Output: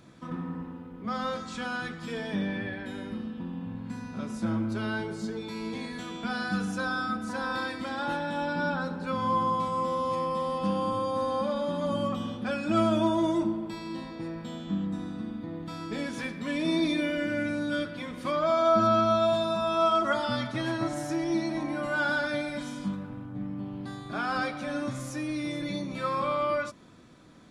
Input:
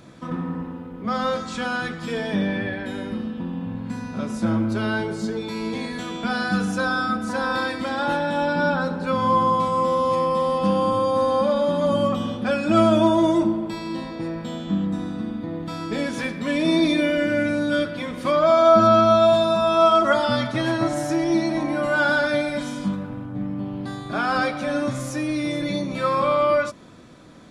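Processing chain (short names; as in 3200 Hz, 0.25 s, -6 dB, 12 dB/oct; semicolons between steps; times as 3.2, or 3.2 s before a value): bell 570 Hz -3 dB 0.66 oct; gain -7 dB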